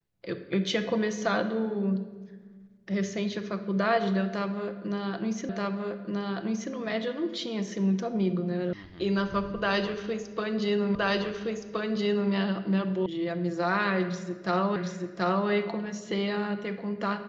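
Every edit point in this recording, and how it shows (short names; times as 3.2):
5.49 repeat of the last 1.23 s
8.73 sound cut off
10.95 repeat of the last 1.37 s
13.06 sound cut off
14.76 repeat of the last 0.73 s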